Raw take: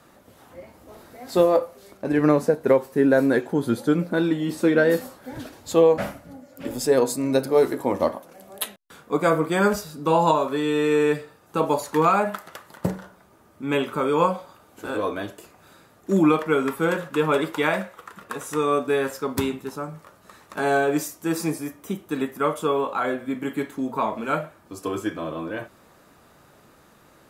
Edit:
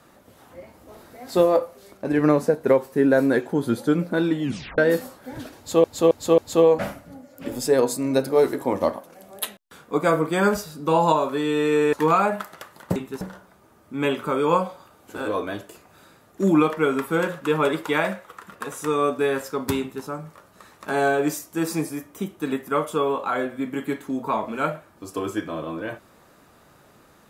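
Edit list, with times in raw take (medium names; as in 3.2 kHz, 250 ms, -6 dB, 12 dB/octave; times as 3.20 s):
4.43 s: tape stop 0.35 s
5.57–5.84 s: loop, 4 plays
11.12–11.87 s: delete
19.49–19.74 s: copy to 12.90 s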